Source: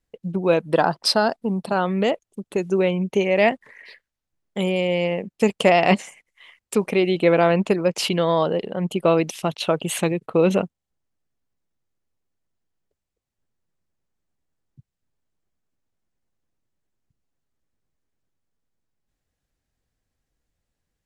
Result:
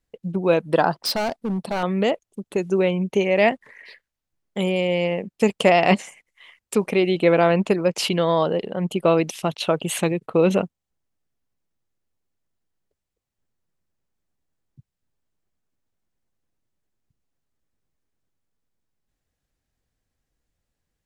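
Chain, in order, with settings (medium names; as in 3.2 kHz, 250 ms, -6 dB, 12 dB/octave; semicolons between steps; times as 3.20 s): 1.04–1.83 s: overload inside the chain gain 20.5 dB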